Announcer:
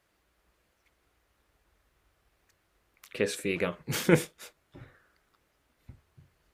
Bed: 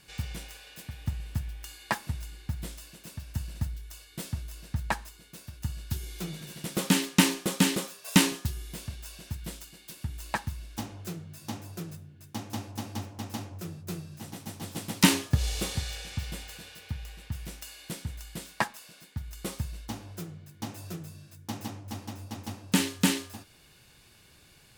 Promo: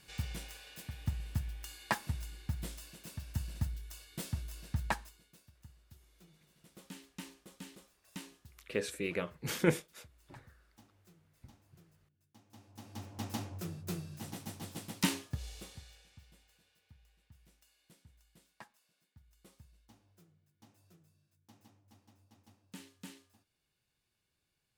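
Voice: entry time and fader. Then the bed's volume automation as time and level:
5.55 s, −6.0 dB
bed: 0:04.87 −3.5 dB
0:05.80 −26 dB
0:12.44 −26 dB
0:13.22 −2.5 dB
0:14.34 −2.5 dB
0:16.30 −25.5 dB

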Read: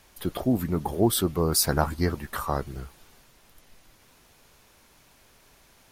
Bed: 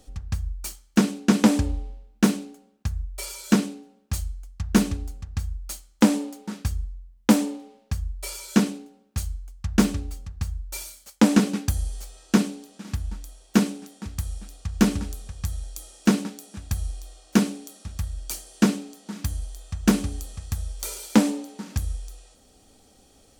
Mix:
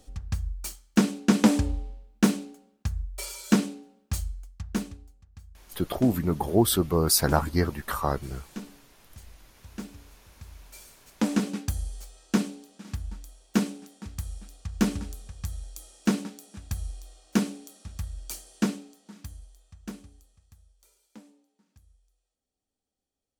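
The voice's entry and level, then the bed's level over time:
5.55 s, +1.0 dB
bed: 0:04.41 −2 dB
0:05.13 −19.5 dB
0:10.21 −19.5 dB
0:11.58 −5 dB
0:18.50 −5 dB
0:20.98 −32 dB

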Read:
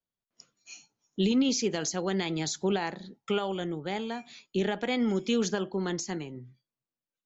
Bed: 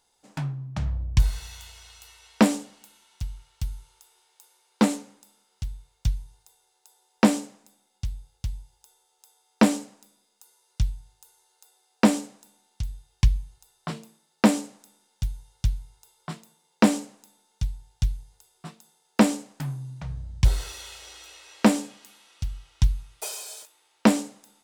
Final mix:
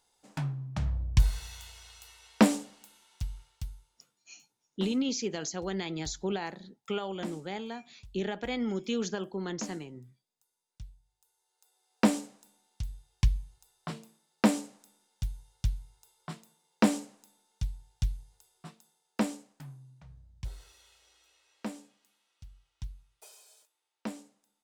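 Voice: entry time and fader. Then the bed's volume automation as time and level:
3.60 s, −4.5 dB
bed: 0:03.40 −3 dB
0:04.22 −21.5 dB
0:11.00 −21.5 dB
0:11.98 −5.5 dB
0:18.53 −5.5 dB
0:20.29 −20 dB

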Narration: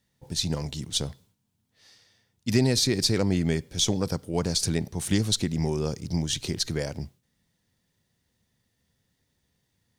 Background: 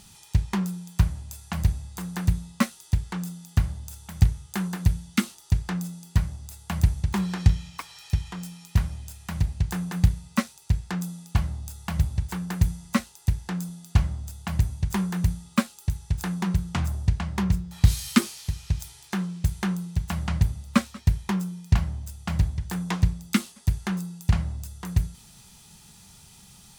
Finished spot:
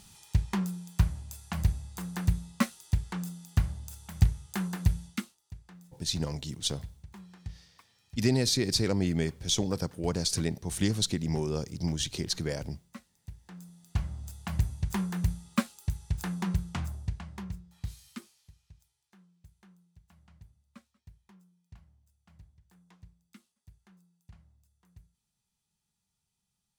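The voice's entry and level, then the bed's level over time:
5.70 s, −3.5 dB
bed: 0:05.06 −4 dB
0:05.39 −23 dB
0:13.20 −23 dB
0:14.28 −5 dB
0:16.55 −5 dB
0:18.94 −32.5 dB

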